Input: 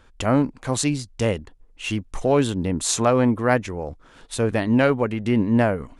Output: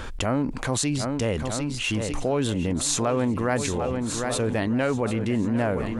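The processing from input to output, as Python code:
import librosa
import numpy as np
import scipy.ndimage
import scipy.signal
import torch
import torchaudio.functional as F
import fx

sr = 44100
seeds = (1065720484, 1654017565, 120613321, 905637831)

p1 = x + fx.echo_swing(x, sr, ms=1250, ratio=1.5, feedback_pct=38, wet_db=-13.0, dry=0)
p2 = fx.env_flatten(p1, sr, amount_pct=70)
y = p2 * librosa.db_to_amplitude(-7.5)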